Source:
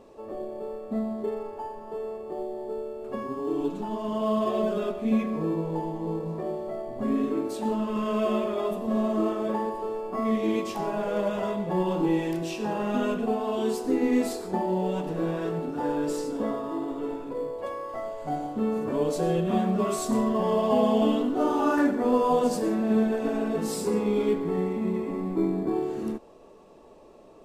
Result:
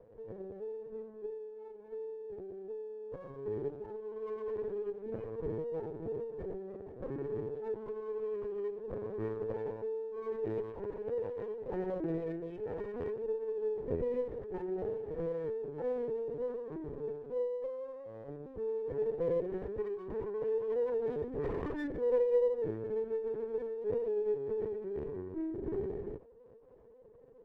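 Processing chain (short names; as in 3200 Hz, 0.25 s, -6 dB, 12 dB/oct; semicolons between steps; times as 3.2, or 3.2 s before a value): 1.24–3.46 compressor 3:1, threshold -34 dBFS, peak gain reduction 6.5 dB; fixed phaser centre 620 Hz, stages 6; notch comb 720 Hz; soft clip -20.5 dBFS, distortion -19 dB; vocal tract filter e; thinning echo 76 ms, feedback 16%, high-pass 310 Hz, level -22 dB; LPC vocoder at 8 kHz pitch kept; running maximum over 5 samples; gain +7 dB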